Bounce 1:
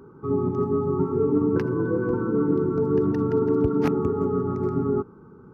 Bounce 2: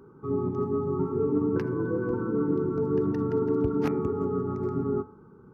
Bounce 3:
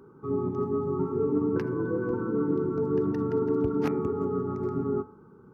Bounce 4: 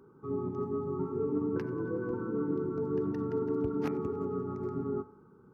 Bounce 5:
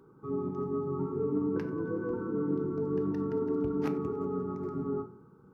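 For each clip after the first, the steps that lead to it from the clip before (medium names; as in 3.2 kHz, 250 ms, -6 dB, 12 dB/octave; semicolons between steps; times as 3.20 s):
de-hum 85.4 Hz, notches 28; trim -4 dB
bass shelf 93 Hz -5.5 dB
thinning echo 93 ms, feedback 72%, level -23 dB; trim -5.5 dB
simulated room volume 280 m³, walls furnished, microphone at 0.62 m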